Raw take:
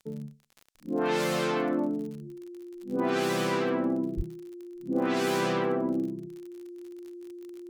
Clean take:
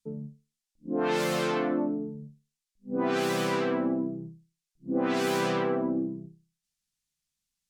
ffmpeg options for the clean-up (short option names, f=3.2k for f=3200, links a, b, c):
-filter_complex "[0:a]adeclick=t=4,bandreject=f=350:w=30,asplit=3[a][b][c];[a]afade=t=out:st=4.16:d=0.02[d];[b]highpass=f=140:w=0.5412,highpass=f=140:w=1.3066,afade=t=in:st=4.16:d=0.02,afade=t=out:st=4.28:d=0.02[e];[c]afade=t=in:st=4.28:d=0.02[f];[d][e][f]amix=inputs=3:normalize=0"